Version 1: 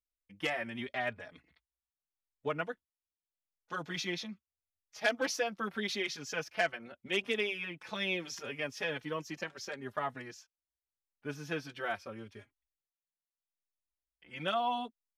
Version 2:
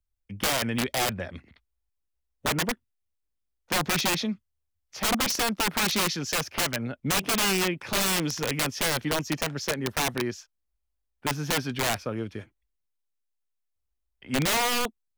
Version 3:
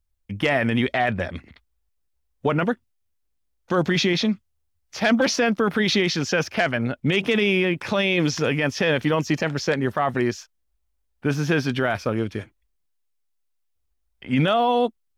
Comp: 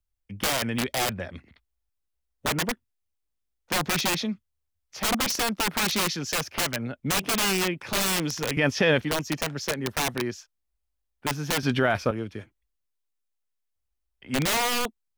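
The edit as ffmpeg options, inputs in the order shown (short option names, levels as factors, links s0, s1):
-filter_complex "[2:a]asplit=2[s0][s1];[1:a]asplit=3[s2][s3][s4];[s2]atrim=end=8.572[s5];[s0]atrim=start=8.568:end=9.012[s6];[s3]atrim=start=9.008:end=11.632[s7];[s1]atrim=start=11.628:end=12.112[s8];[s4]atrim=start=12.108[s9];[s5][s6]acrossfade=d=0.004:c1=hsin:c2=hsin[s10];[s10][s7]acrossfade=d=0.004:c1=hsin:c2=hsin[s11];[s11][s8]acrossfade=d=0.004:c1=hsin:c2=hsin[s12];[s12][s9]acrossfade=d=0.004:c1=hsin:c2=hsin"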